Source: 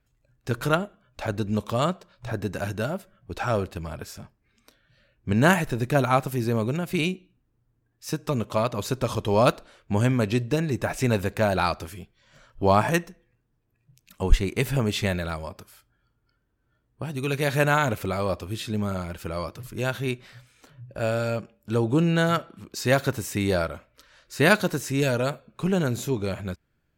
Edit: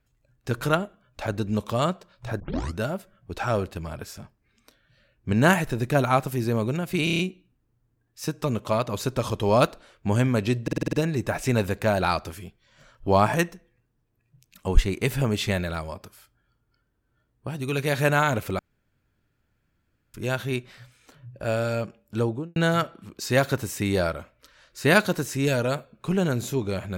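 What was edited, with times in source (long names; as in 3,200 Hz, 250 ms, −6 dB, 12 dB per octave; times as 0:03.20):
0:02.40: tape start 0.39 s
0:07.04: stutter 0.03 s, 6 plays
0:10.48: stutter 0.05 s, 7 plays
0:18.14–0:19.69: fill with room tone
0:21.70–0:22.11: fade out and dull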